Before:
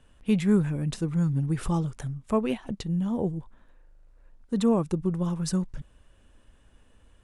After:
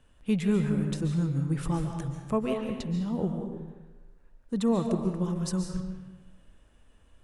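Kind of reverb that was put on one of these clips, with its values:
comb and all-pass reverb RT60 1.2 s, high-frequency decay 0.75×, pre-delay 100 ms, DRR 4 dB
level −3 dB

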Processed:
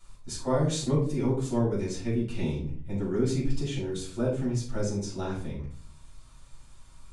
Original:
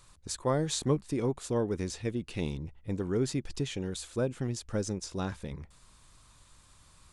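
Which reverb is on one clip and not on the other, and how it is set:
rectangular room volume 370 cubic metres, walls furnished, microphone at 7.5 metres
level −10 dB

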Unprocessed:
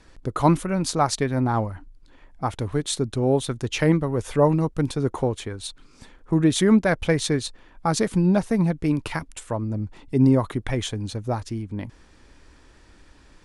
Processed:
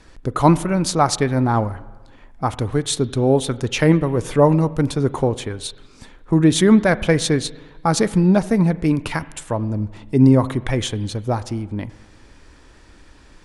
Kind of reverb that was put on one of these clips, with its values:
spring reverb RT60 1.3 s, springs 38/42 ms, chirp 80 ms, DRR 16.5 dB
level +4.5 dB

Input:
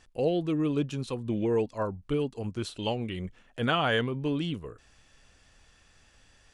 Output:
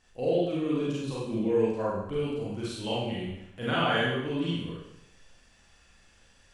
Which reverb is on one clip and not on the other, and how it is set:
four-comb reverb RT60 0.85 s, combs from 32 ms, DRR −7.5 dB
level −7.5 dB

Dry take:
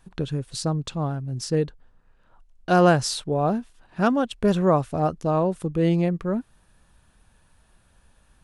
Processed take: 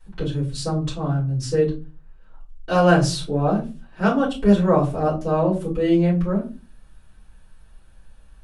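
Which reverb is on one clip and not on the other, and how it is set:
rectangular room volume 120 cubic metres, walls furnished, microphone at 4.7 metres
level −9.5 dB

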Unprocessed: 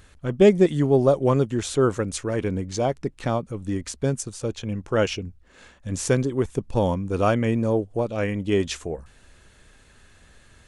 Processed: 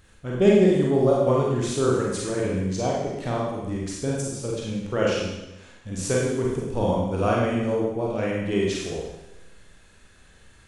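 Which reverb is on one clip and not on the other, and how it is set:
four-comb reverb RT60 0.97 s, combs from 33 ms, DRR −4 dB
level −5.5 dB

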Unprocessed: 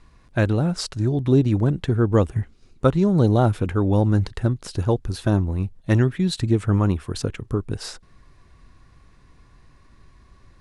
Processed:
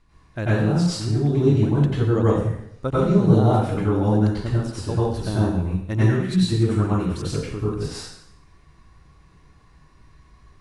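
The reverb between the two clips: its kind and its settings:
dense smooth reverb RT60 0.75 s, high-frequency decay 0.95×, pre-delay 80 ms, DRR −9 dB
level −9 dB

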